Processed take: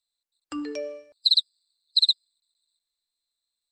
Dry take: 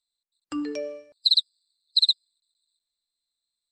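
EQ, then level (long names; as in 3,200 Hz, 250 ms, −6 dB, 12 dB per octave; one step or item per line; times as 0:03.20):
parametric band 170 Hz −15 dB 0.68 octaves
0.0 dB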